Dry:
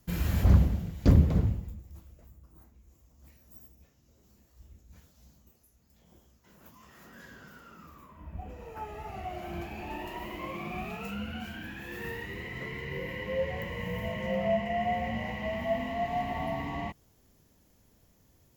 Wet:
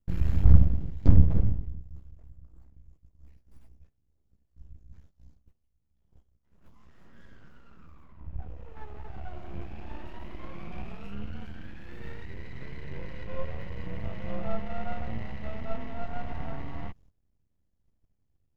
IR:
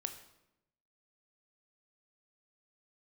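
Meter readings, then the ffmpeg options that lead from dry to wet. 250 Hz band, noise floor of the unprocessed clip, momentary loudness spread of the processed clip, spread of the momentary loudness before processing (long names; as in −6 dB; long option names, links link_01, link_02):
−3.0 dB, −65 dBFS, 23 LU, 21 LU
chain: -af "aeval=exprs='max(val(0),0)':channel_layout=same,aemphasis=mode=reproduction:type=bsi,agate=range=-13dB:threshold=-48dB:ratio=16:detection=peak,volume=-4.5dB"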